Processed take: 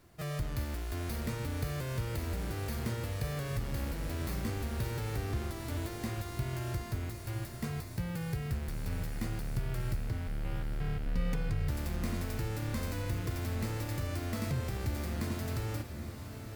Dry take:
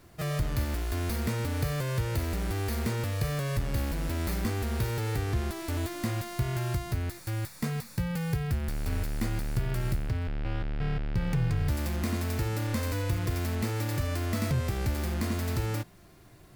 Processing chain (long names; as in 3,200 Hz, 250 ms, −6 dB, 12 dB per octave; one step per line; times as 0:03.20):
0:11.06–0:11.50: comb filter 4.1 ms, depth 85%
feedback delay with all-pass diffusion 874 ms, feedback 56%, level −9 dB
level −6 dB